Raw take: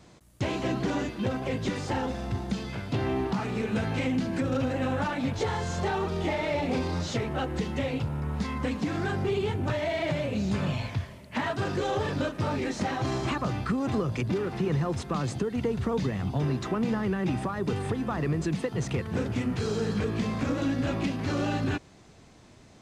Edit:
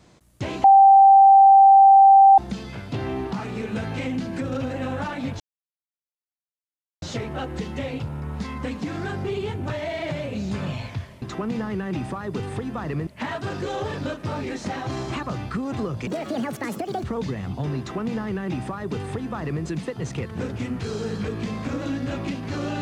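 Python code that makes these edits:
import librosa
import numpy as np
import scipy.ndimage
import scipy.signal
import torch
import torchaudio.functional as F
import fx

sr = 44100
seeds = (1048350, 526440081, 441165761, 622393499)

y = fx.edit(x, sr, fx.bleep(start_s=0.64, length_s=1.74, hz=783.0, db=-8.0),
    fx.silence(start_s=5.4, length_s=1.62),
    fx.speed_span(start_s=14.22, length_s=1.58, speed=1.63),
    fx.duplicate(start_s=16.55, length_s=1.85, to_s=11.22), tone=tone)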